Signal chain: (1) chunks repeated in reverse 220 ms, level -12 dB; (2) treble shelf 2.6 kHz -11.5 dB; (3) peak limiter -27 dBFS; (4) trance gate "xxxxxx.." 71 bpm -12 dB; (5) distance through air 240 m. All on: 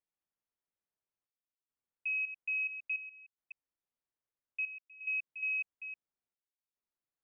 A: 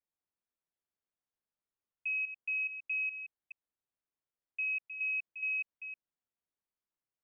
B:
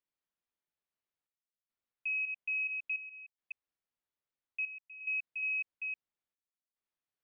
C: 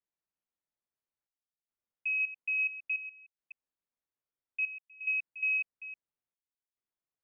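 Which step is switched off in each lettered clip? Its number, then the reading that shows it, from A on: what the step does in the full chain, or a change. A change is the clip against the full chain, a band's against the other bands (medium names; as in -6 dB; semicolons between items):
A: 4, loudness change +1.0 LU; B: 2, momentary loudness spread change +4 LU; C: 3, mean gain reduction 2.5 dB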